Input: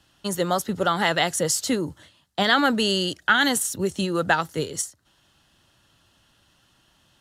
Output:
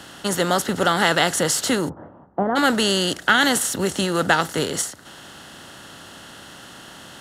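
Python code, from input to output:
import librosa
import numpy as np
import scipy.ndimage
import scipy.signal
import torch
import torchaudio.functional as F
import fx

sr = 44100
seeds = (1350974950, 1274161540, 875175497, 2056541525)

y = fx.bin_compress(x, sr, power=0.6)
y = fx.lowpass(y, sr, hz=1000.0, slope=24, at=(1.88, 2.55), fade=0.02)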